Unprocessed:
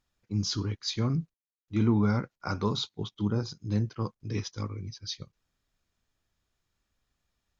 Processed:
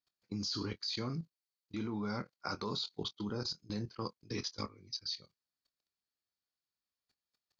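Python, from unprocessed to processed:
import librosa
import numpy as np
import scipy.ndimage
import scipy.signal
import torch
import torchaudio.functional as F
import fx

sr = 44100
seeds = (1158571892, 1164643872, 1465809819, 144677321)

y = fx.highpass(x, sr, hz=330.0, slope=6)
y = fx.peak_eq(y, sr, hz=4500.0, db=13.0, octaves=0.31)
y = fx.level_steps(y, sr, step_db=20)
y = fx.doubler(y, sr, ms=24.0, db=-13.0)
y = y * librosa.db_to_amplitude(2.5)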